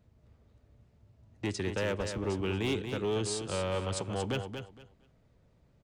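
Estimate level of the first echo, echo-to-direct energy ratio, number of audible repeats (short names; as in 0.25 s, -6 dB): -7.5 dB, -7.5 dB, 3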